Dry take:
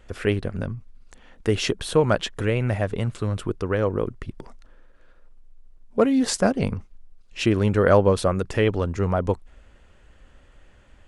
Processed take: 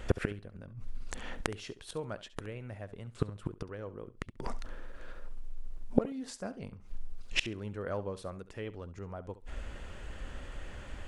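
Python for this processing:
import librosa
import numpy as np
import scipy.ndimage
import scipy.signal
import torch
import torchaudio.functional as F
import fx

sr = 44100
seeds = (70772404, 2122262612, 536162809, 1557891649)

y = fx.gate_flip(x, sr, shuts_db=-21.0, range_db=-29)
y = fx.room_flutter(y, sr, wall_m=11.7, rt60_s=0.26)
y = y * 10.0 ** (9.0 / 20.0)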